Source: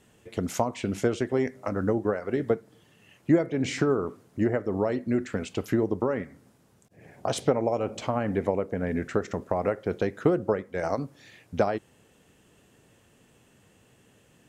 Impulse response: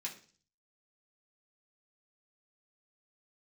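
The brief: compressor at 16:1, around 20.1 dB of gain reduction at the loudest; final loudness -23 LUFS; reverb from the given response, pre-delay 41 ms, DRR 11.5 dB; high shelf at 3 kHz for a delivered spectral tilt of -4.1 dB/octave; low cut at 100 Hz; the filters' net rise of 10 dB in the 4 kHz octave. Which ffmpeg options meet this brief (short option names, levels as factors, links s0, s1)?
-filter_complex "[0:a]highpass=100,highshelf=f=3000:g=6.5,equalizer=f=4000:t=o:g=8,acompressor=threshold=0.0141:ratio=16,asplit=2[s0][s1];[1:a]atrim=start_sample=2205,adelay=41[s2];[s1][s2]afir=irnorm=-1:irlink=0,volume=0.282[s3];[s0][s3]amix=inputs=2:normalize=0,volume=9.44"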